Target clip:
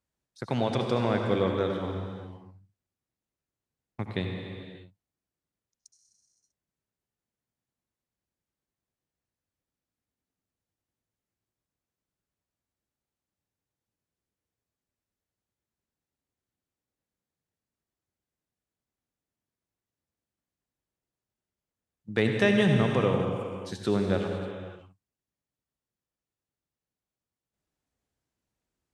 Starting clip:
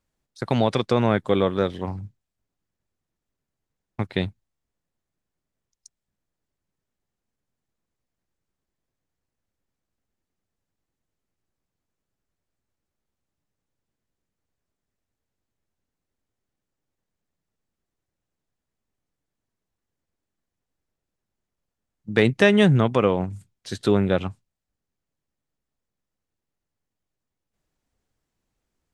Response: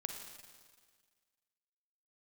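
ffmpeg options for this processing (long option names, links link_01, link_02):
-filter_complex "[0:a]highpass=46[link_01];[1:a]atrim=start_sample=2205,afade=type=out:start_time=0.43:duration=0.01,atrim=end_sample=19404,asetrate=26019,aresample=44100[link_02];[link_01][link_02]afir=irnorm=-1:irlink=0,volume=-7.5dB"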